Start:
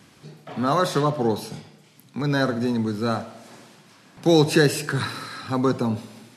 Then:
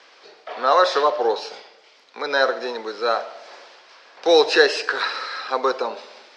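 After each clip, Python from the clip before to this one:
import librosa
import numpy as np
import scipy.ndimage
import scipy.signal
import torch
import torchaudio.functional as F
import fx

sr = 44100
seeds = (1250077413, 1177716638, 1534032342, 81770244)

y = scipy.signal.sosfilt(scipy.signal.ellip(3, 1.0, 60, [480.0, 5200.0], 'bandpass', fs=sr, output='sos'), x)
y = y * 10.0 ** (6.5 / 20.0)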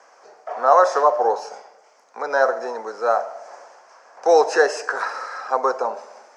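y = fx.curve_eq(x, sr, hz=(110.0, 190.0, 330.0, 720.0, 1600.0, 3800.0, 6300.0), db=(0, 5, 1, 13, 5, -14, 11))
y = y * 10.0 ** (-7.0 / 20.0)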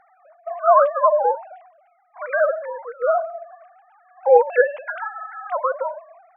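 y = fx.sine_speech(x, sr)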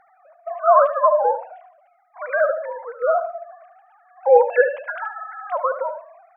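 y = fx.echo_feedback(x, sr, ms=74, feedback_pct=20, wet_db=-12)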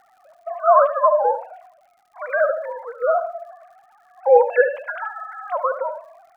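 y = fx.dmg_crackle(x, sr, seeds[0], per_s=120.0, level_db=-50.0)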